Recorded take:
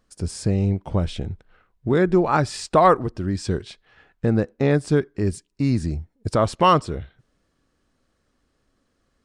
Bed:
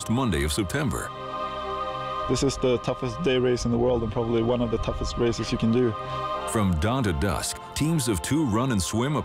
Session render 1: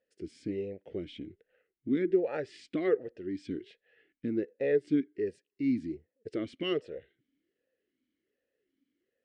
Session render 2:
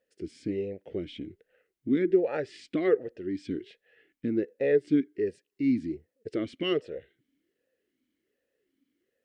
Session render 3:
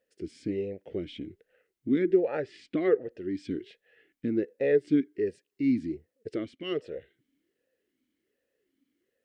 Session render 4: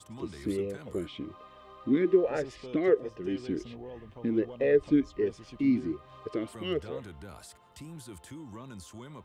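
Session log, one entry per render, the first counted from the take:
talking filter e-i 1.3 Hz
trim +3.5 dB
2.25–3.11 s: treble shelf 5.1 kHz -10.5 dB; 6.30–6.88 s: dip -8.5 dB, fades 0.25 s
add bed -21 dB

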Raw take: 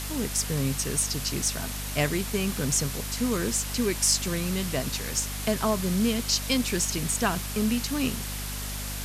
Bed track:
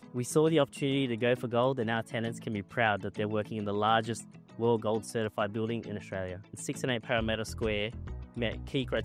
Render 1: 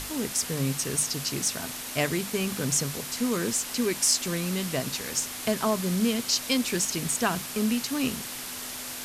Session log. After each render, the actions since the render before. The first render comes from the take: hum notches 50/100/150/200 Hz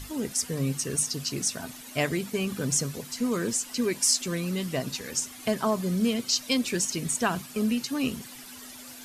noise reduction 12 dB, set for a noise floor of -37 dBFS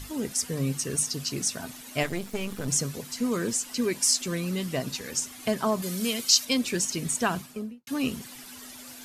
2.03–2.68 s: partial rectifier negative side -12 dB; 5.82–6.45 s: tilt EQ +2.5 dB/octave; 7.31–7.87 s: studio fade out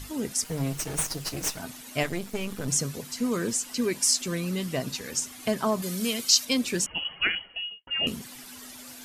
0.44–1.60 s: comb filter that takes the minimum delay 6.4 ms; 6.86–8.07 s: frequency inversion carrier 3.1 kHz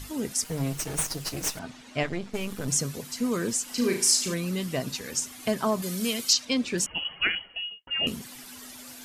1.59–2.34 s: distance through air 110 m; 3.64–4.34 s: flutter echo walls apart 6.3 m, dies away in 0.44 s; 6.33–6.78 s: distance through air 89 m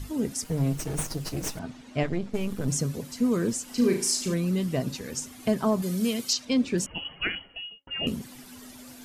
tilt shelf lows +5 dB, about 660 Hz; de-hum 276.9 Hz, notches 5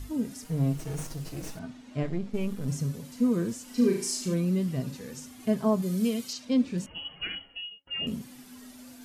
harmonic-percussive split percussive -14 dB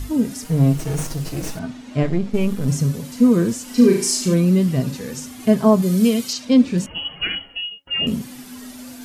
trim +11 dB; peak limiter -3 dBFS, peak gain reduction 1 dB

